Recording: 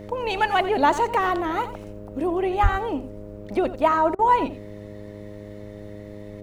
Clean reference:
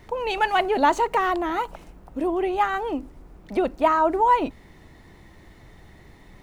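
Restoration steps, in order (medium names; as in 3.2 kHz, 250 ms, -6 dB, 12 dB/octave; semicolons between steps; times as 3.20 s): de-hum 103.3 Hz, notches 6; de-plosive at 2.62 s; interpolate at 4.15 s, 38 ms; inverse comb 88 ms -13.5 dB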